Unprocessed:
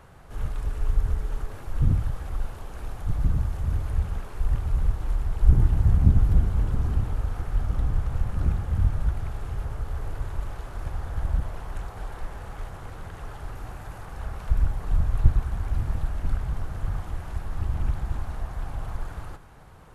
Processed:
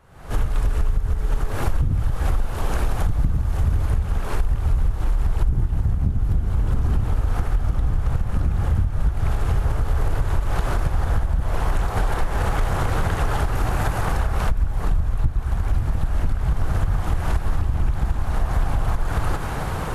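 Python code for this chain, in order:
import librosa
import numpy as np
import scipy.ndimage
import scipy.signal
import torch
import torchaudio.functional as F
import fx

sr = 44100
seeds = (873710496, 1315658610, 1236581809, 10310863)

y = fx.recorder_agc(x, sr, target_db=-6.5, rise_db_per_s=66.0, max_gain_db=30)
y = y * librosa.db_to_amplitude(-6.0)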